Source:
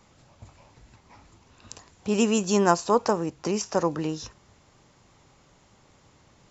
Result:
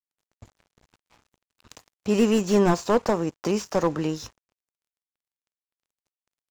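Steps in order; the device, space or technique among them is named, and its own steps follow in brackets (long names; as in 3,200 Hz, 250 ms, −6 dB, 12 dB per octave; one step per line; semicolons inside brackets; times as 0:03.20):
early transistor amplifier (dead-zone distortion −48.5 dBFS; slew-rate limiting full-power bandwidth 79 Hz)
level +3 dB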